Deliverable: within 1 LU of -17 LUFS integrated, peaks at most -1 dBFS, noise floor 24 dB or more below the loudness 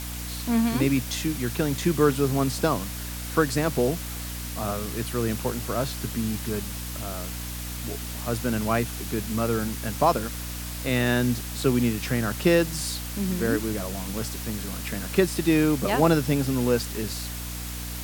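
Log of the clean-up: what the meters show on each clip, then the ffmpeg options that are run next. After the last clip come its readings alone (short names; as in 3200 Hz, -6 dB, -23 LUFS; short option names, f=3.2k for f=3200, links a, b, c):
hum 60 Hz; harmonics up to 300 Hz; hum level -33 dBFS; noise floor -34 dBFS; noise floor target -50 dBFS; loudness -26.0 LUFS; peak -6.0 dBFS; loudness target -17.0 LUFS
-> -af "bandreject=f=60:t=h:w=4,bandreject=f=120:t=h:w=4,bandreject=f=180:t=h:w=4,bandreject=f=240:t=h:w=4,bandreject=f=300:t=h:w=4"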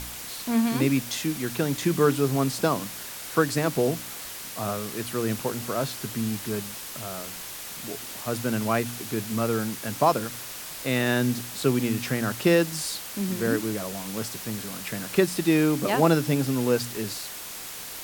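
hum none; noise floor -38 dBFS; noise floor target -51 dBFS
-> -af "afftdn=nr=13:nf=-38"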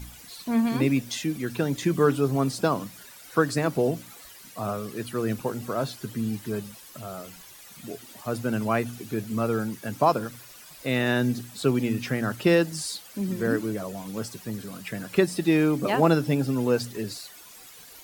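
noise floor -48 dBFS; noise floor target -51 dBFS
-> -af "afftdn=nr=6:nf=-48"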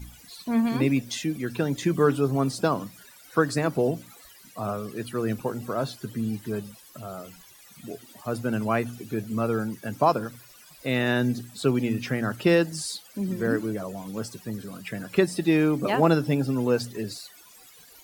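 noise floor -52 dBFS; loudness -26.5 LUFS; peak -6.5 dBFS; loudness target -17.0 LUFS
-> -af "volume=9.5dB,alimiter=limit=-1dB:level=0:latency=1"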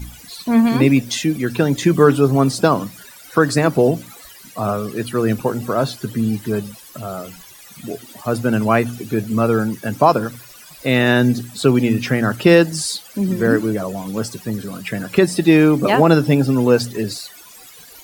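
loudness -17.5 LUFS; peak -1.0 dBFS; noise floor -42 dBFS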